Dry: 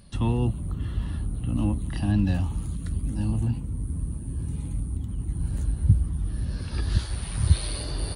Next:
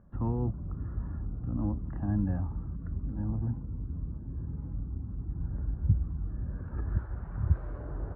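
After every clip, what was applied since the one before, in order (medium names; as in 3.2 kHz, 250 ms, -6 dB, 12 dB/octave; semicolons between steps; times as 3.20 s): Chebyshev low-pass 1.5 kHz, order 4; trim -5.5 dB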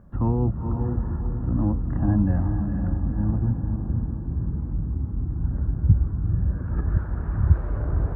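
echo that smears into a reverb 470 ms, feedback 44%, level -5 dB; trim +8 dB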